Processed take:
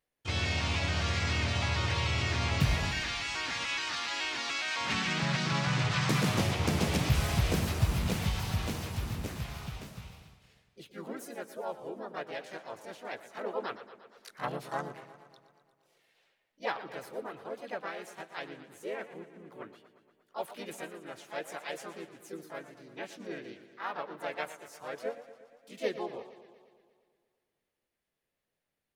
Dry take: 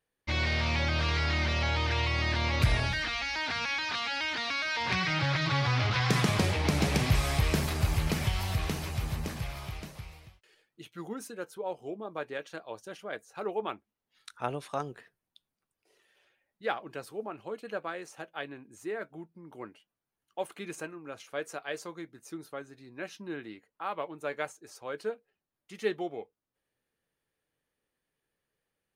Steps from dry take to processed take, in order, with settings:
pitch-shifted copies added +3 semitones −1 dB, +7 semitones −5 dB
feedback echo with a swinging delay time 117 ms, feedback 66%, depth 114 cents, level −13.5 dB
level −5.5 dB

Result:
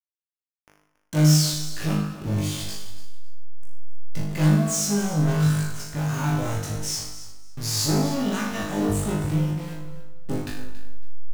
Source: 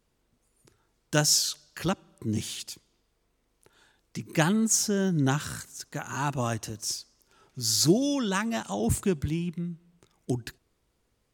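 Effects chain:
hold until the input has moved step −36.5 dBFS
low-shelf EQ 270 Hz +10 dB
hum removal 49.17 Hz, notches 35
leveller curve on the samples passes 5
tuned comb filter 51 Hz, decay 0.63 s, harmonics all, mix 100%
pitch vibrato 6.1 Hz 9.4 cents
repeating echo 278 ms, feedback 21%, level −14.5 dB
feedback delay network reverb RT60 1 s, low-frequency decay 0.75×, high-frequency decay 0.65×, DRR 6.5 dB
level −4.5 dB

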